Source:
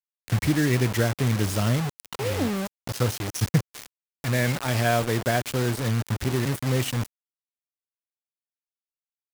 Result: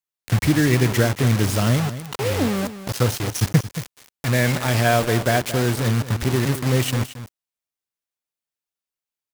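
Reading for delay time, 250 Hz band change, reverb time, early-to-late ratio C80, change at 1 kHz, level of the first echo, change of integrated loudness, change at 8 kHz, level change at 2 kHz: 225 ms, +4.5 dB, no reverb, no reverb, +4.5 dB, -13.0 dB, +4.5 dB, +4.5 dB, +4.5 dB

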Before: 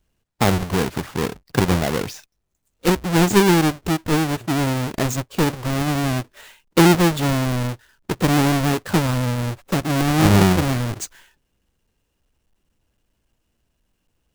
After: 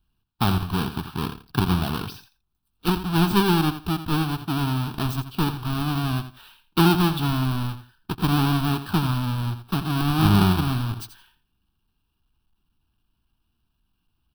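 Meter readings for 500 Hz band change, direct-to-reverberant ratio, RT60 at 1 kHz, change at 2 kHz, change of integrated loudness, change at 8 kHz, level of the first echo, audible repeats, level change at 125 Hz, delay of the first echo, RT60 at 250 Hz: -9.5 dB, no reverb, no reverb, -6.5 dB, -4.0 dB, -11.5 dB, -11.5 dB, 2, -2.0 dB, 84 ms, no reverb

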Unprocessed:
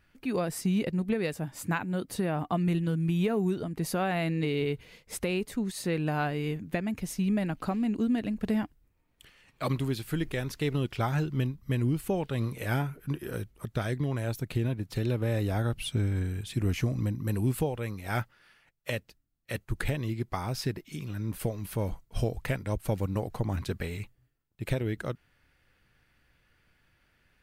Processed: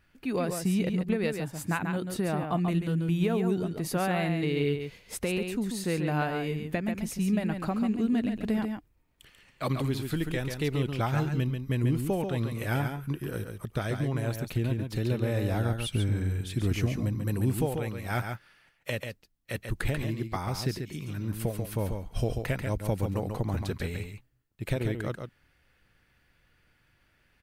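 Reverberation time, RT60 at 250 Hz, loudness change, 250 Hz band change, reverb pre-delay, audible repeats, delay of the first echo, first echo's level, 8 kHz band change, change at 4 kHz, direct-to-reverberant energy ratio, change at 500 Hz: no reverb, no reverb, +1.0 dB, +1.0 dB, no reverb, 1, 139 ms, -6.0 dB, +1.0 dB, +1.0 dB, no reverb, +1.0 dB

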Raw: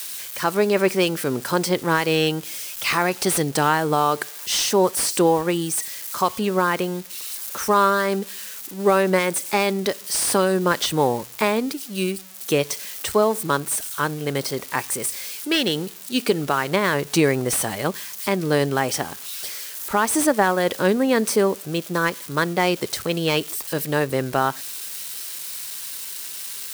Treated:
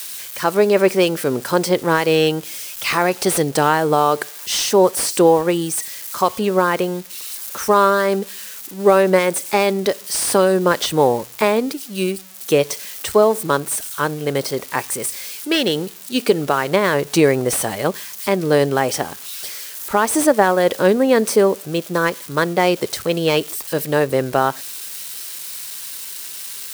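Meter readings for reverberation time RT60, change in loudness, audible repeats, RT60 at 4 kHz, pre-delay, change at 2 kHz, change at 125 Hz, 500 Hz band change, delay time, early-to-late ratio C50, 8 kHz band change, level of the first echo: no reverb, +3.5 dB, no echo, no reverb, no reverb, +2.0 dB, +2.0 dB, +5.5 dB, no echo, no reverb, +1.5 dB, no echo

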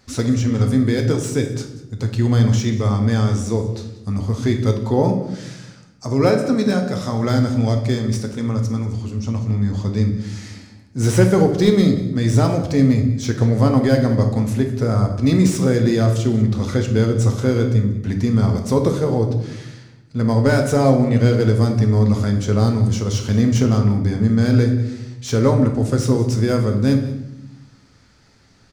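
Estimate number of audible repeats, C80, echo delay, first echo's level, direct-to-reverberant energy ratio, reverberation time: 1, 10.0 dB, 188 ms, -17.0 dB, 3.0 dB, 0.85 s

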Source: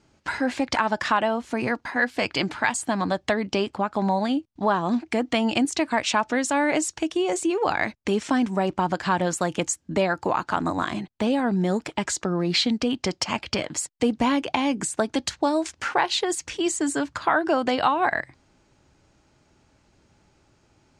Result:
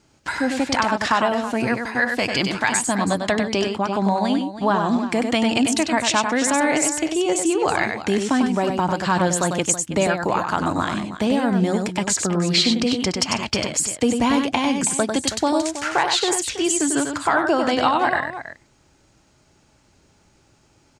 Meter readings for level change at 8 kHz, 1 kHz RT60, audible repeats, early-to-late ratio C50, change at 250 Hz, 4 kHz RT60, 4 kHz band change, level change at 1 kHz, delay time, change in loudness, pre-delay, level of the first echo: +8.0 dB, no reverb, 2, no reverb, +4.0 dB, no reverb, +5.0 dB, +3.0 dB, 97 ms, +4.0 dB, no reverb, -5.5 dB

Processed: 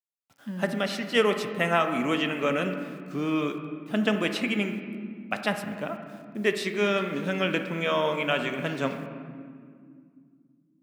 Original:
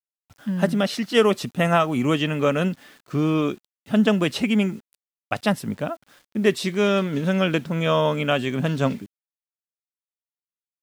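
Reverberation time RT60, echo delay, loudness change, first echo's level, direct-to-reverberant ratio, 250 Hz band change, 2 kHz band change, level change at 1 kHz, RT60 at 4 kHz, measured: 2.3 s, no echo, -5.0 dB, no echo, 6.5 dB, -6.5 dB, -1.0 dB, -3.5 dB, 1.4 s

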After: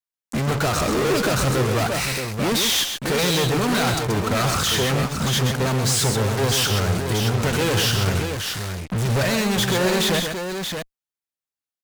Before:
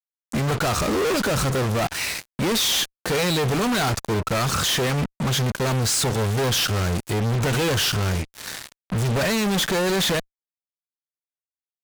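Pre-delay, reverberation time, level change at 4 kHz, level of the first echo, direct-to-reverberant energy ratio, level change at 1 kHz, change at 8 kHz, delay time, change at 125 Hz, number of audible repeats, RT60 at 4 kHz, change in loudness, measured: no reverb, no reverb, +1.5 dB, -6.0 dB, no reverb, +1.5 dB, +1.5 dB, 129 ms, +2.0 dB, 2, no reverb, +1.5 dB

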